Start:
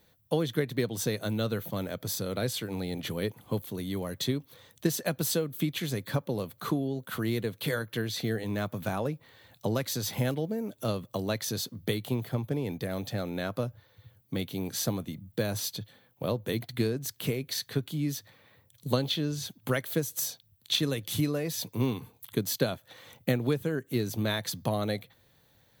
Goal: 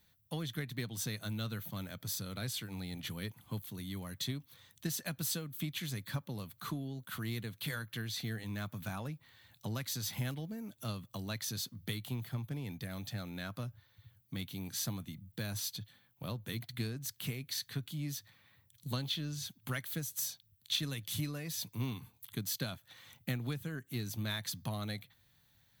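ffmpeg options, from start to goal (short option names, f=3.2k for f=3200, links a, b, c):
-filter_complex "[0:a]equalizer=f=470:w=0.91:g=-13.5,asplit=2[a][b];[b]asoftclip=type=tanh:threshold=-31.5dB,volume=-6.5dB[c];[a][c]amix=inputs=2:normalize=0,volume=-7dB"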